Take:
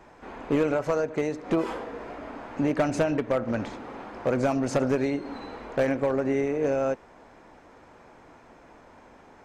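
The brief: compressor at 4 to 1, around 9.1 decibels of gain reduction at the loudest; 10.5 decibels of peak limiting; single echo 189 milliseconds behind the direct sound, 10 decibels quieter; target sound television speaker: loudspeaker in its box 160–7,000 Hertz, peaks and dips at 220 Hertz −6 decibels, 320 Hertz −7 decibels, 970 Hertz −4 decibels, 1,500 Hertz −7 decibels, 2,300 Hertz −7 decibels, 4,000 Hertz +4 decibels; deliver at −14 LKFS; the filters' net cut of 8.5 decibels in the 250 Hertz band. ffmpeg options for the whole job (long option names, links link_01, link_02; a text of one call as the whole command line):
ffmpeg -i in.wav -af "equalizer=frequency=250:width_type=o:gain=-4,acompressor=threshold=-32dB:ratio=4,alimiter=level_in=5.5dB:limit=-24dB:level=0:latency=1,volume=-5.5dB,highpass=frequency=160:width=0.5412,highpass=frequency=160:width=1.3066,equalizer=frequency=220:width_type=q:width=4:gain=-6,equalizer=frequency=320:width_type=q:width=4:gain=-7,equalizer=frequency=970:width_type=q:width=4:gain=-4,equalizer=frequency=1500:width_type=q:width=4:gain=-7,equalizer=frequency=2300:width_type=q:width=4:gain=-7,equalizer=frequency=4000:width_type=q:width=4:gain=4,lowpass=frequency=7000:width=0.5412,lowpass=frequency=7000:width=1.3066,aecho=1:1:189:0.316,volume=27dB" out.wav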